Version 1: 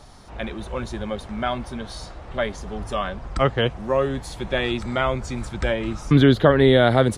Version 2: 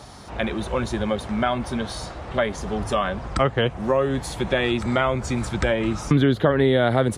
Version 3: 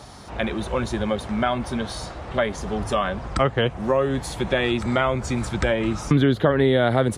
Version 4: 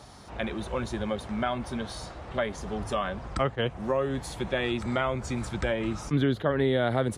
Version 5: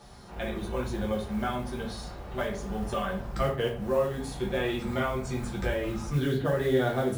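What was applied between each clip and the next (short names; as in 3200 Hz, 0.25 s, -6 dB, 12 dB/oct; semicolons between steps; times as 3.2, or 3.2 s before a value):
HPF 65 Hz; dynamic EQ 4700 Hz, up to -4 dB, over -43 dBFS, Q 1.4; compressor 2.5:1, threshold -25 dBFS, peak gain reduction 10.5 dB; gain +6 dB
nothing audible
attack slew limiter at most 430 dB/s; gain -6.5 dB
modulation noise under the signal 25 dB; shoebox room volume 34 m³, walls mixed, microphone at 0.86 m; gain -7 dB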